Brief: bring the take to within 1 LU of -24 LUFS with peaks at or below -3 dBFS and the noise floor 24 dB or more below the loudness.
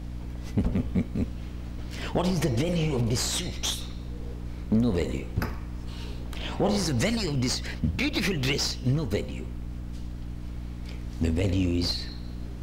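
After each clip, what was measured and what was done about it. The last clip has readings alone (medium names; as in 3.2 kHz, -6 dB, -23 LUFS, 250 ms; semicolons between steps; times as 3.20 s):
hum 60 Hz; highest harmonic 300 Hz; hum level -34 dBFS; noise floor -37 dBFS; noise floor target -53 dBFS; loudness -29.0 LUFS; peak level -12.5 dBFS; loudness target -24.0 LUFS
-> hum notches 60/120/180/240/300 Hz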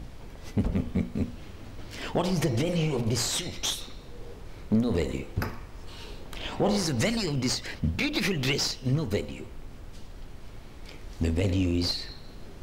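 hum not found; noise floor -45 dBFS; noise floor target -53 dBFS
-> noise print and reduce 8 dB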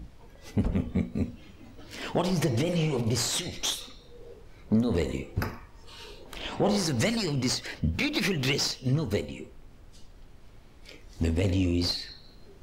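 noise floor -52 dBFS; noise floor target -53 dBFS
-> noise print and reduce 6 dB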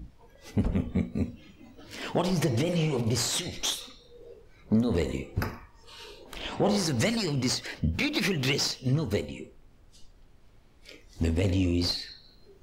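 noise floor -57 dBFS; loudness -28.5 LUFS; peak level -14.0 dBFS; loudness target -24.0 LUFS
-> trim +4.5 dB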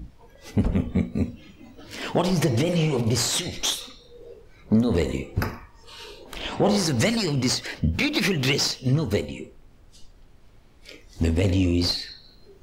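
loudness -24.0 LUFS; peak level -9.5 dBFS; noise floor -52 dBFS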